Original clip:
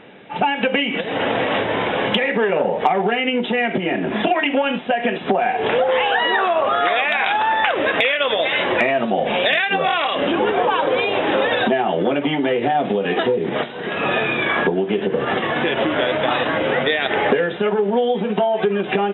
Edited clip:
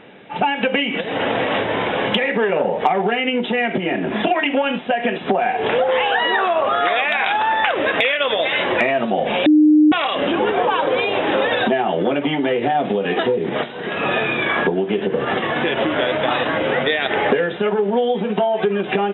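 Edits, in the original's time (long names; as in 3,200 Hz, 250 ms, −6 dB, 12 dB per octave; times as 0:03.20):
0:09.46–0:09.92: beep over 304 Hz −8 dBFS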